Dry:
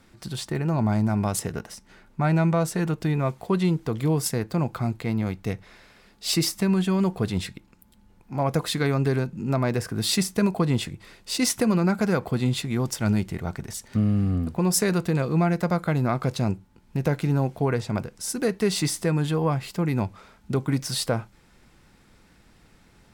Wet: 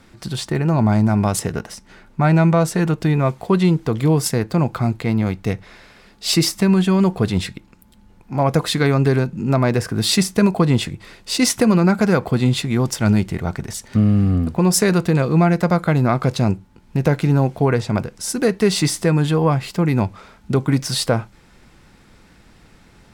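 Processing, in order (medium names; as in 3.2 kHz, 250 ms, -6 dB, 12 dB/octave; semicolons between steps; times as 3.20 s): treble shelf 11 kHz -6.5 dB; trim +7 dB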